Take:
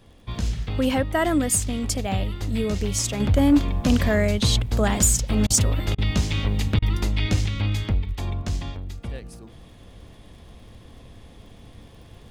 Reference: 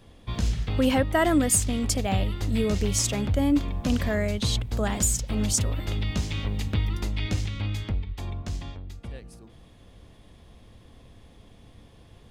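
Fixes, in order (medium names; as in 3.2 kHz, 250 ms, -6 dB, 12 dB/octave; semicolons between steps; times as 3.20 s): clip repair -10.5 dBFS; de-click; interpolate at 5.47/5.95/6.79 s, 31 ms; gain correction -5.5 dB, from 3.20 s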